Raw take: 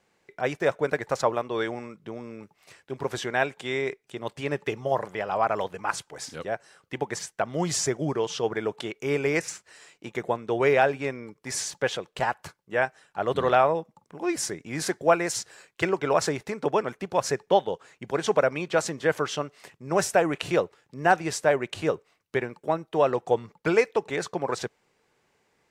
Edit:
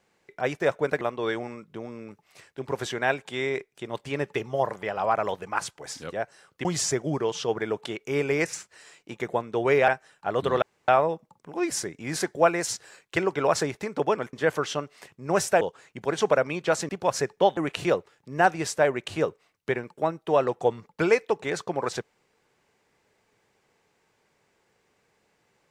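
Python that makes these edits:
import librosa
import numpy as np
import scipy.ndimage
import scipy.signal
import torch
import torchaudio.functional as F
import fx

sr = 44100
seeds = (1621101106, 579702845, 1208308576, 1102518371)

y = fx.edit(x, sr, fx.cut(start_s=1.01, length_s=0.32),
    fx.cut(start_s=6.97, length_s=0.63),
    fx.cut(start_s=10.83, length_s=1.97),
    fx.insert_room_tone(at_s=13.54, length_s=0.26),
    fx.swap(start_s=16.99, length_s=0.68, other_s=18.95, other_length_s=1.28), tone=tone)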